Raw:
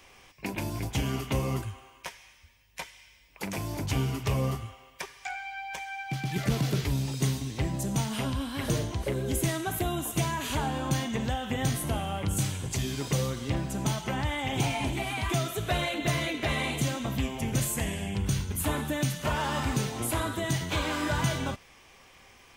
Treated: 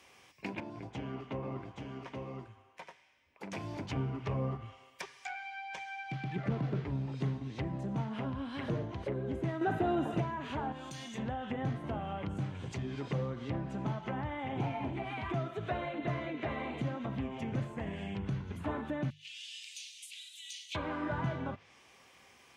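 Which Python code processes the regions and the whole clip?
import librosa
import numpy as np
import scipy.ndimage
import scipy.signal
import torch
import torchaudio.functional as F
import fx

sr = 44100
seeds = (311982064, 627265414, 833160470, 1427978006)

y = fx.chain(x, sr, fx.lowpass(hz=1000.0, slope=6),
    fx.low_shelf(hz=180.0, db=-9.0),
    fx.echo_single(ms=827, db=-3.5), at=(0.6, 3.52))
y = fx.chain(y, sr, fx.leveller(passes=2),
    fx.notch_comb(f0_hz=1100.0),
    fx.env_flatten(amount_pct=50), at=(9.61, 10.21))
y = fx.chain(y, sr, fx.highpass(hz=47.0, slope=12),
    fx.pre_emphasis(coefficient=0.8),
    fx.env_flatten(amount_pct=50), at=(10.72, 11.18))
y = fx.chain(y, sr, fx.steep_highpass(hz=2500.0, slope=48),
    fx.high_shelf(hz=8600.0, db=-5.5), at=(19.1, 20.75))
y = scipy.signal.sosfilt(scipy.signal.butter(2, 97.0, 'highpass', fs=sr, output='sos'), y)
y = fx.hum_notches(y, sr, base_hz=50, count=3)
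y = fx.env_lowpass_down(y, sr, base_hz=1500.0, full_db=-27.5)
y = F.gain(torch.from_numpy(y), -5.0).numpy()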